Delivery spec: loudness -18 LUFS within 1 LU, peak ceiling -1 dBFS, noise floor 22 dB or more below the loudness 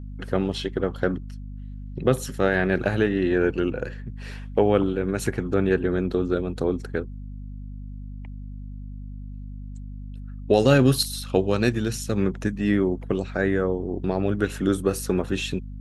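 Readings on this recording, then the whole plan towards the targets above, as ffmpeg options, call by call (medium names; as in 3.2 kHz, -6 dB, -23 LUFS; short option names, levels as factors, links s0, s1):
hum 50 Hz; highest harmonic 250 Hz; hum level -33 dBFS; loudness -24.0 LUFS; peak level -5.0 dBFS; loudness target -18.0 LUFS
-> -af "bandreject=f=50:t=h:w=6,bandreject=f=100:t=h:w=6,bandreject=f=150:t=h:w=6,bandreject=f=200:t=h:w=6,bandreject=f=250:t=h:w=6"
-af "volume=2,alimiter=limit=0.891:level=0:latency=1"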